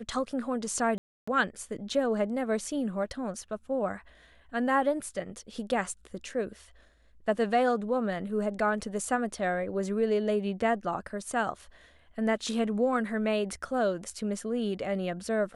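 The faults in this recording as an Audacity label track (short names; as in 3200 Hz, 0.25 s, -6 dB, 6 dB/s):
0.980000	1.270000	gap 0.295 s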